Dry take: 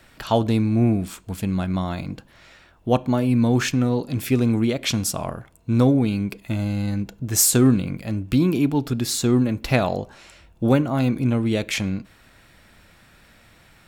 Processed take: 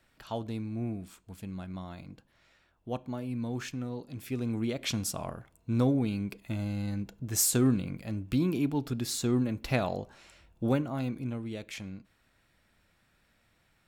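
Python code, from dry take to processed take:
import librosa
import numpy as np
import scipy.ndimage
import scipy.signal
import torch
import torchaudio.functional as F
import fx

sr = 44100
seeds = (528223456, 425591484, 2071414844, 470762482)

y = fx.gain(x, sr, db=fx.line((4.2, -16.0), (4.8, -9.0), (10.63, -9.0), (11.53, -16.5)))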